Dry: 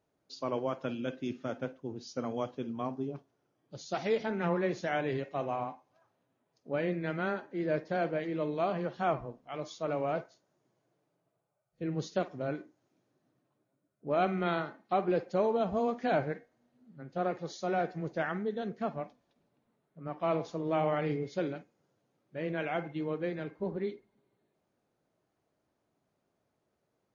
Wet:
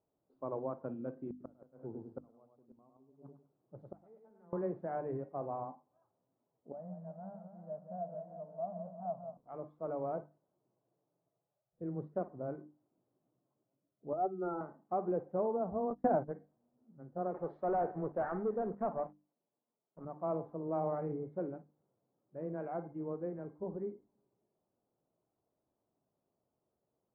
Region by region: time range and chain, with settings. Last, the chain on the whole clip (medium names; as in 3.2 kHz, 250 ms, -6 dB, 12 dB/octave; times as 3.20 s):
1.30–4.53 s: feedback delay 103 ms, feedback 26%, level -4 dB + inverted gate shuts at -26 dBFS, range -26 dB
6.72–9.37 s: CVSD coder 16 kbps + two resonant band-passes 360 Hz, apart 1.8 oct + modulated delay 180 ms, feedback 56%, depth 132 cents, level -8 dB
14.13–14.61 s: spectral contrast enhancement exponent 2 + comb 2.3 ms, depth 85% + overdrive pedal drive 10 dB, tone 1.4 kHz, clips at -17.5 dBFS
15.90–16.34 s: band-stop 2.3 kHz, Q 16 + transient shaper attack +11 dB, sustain -1 dB + gate -35 dBFS, range -21 dB
17.34–20.05 s: high-pass 450 Hz 6 dB/octave + waveshaping leveller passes 3
whole clip: low-pass 1.1 kHz 24 dB/octave; hum notches 50/100/150/200/250/300 Hz; trim -5 dB